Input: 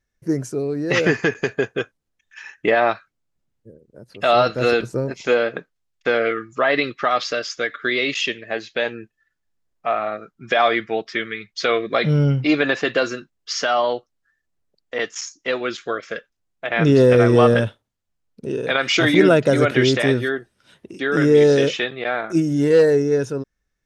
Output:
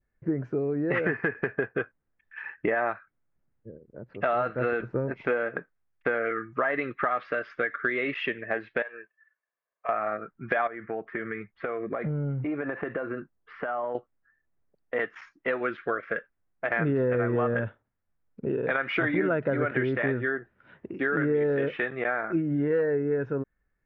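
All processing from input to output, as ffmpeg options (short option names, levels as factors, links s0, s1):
-filter_complex "[0:a]asettb=1/sr,asplit=3[s0][s1][s2];[s0]atrim=end=8.824[s3];[s1]atrim=start=8.82:end=9.89,asetpts=PTS-STARTPTS,afade=t=in:d=0.004:c=qsin,afade=t=out:st=1.066:d=0.004:c=qsin,highpass=680,aecho=1:1:1.8:0.54,atrim=end_sample=47187,acompressor=threshold=0.0224:ratio=4:attack=3.2:release=140:knee=1:detection=peak[s4];[s2]atrim=start=9.886[s5];[s3][s4]acrossfade=d=0.004:c1=hsin:c2=qsin[s6];[s6][s5]acrossfade=d=0.004:c1=qsin:c2=hsin,asettb=1/sr,asplit=3[s7][s8][s9];[s7]atrim=end=10.674[s10];[s8]atrim=start=10.67:end=13.95,asetpts=PTS-STARTPTS,afade=t=in:d=0.004:c=qsin,afade=t=out:st=3.276:d=0.004:c=qsin,lowpass=1800,acompressor=threshold=0.0447:ratio=6:attack=3.2:release=140:knee=1:detection=peak[s11];[s9]atrim=start=13.946[s12];[s10][s11]acrossfade=d=0.004:c1=hsin:c2=qsin[s13];[s13][s12]acrossfade=d=0.004:c1=qsin:c2=hsin,lowpass=f=2100:w=0.5412,lowpass=f=2100:w=1.3066,adynamicequalizer=threshold=0.02:dfrequency=1600:dqfactor=1.7:tfrequency=1600:tqfactor=1.7:attack=5:release=100:ratio=0.375:range=2.5:mode=boostabove:tftype=bell,acompressor=threshold=0.0562:ratio=4"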